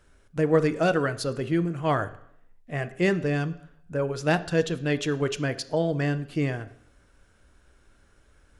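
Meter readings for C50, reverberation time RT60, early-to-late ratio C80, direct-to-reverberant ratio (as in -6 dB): 16.0 dB, 0.70 s, 19.0 dB, 11.5 dB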